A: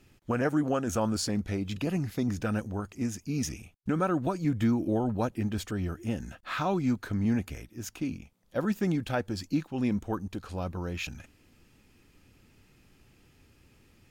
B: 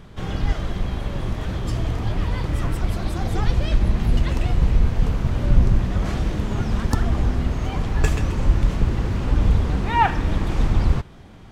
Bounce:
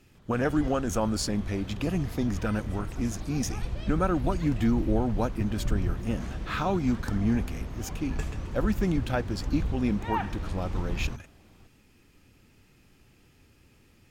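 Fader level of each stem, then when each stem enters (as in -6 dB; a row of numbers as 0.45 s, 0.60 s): +1.0 dB, -13.0 dB; 0.00 s, 0.15 s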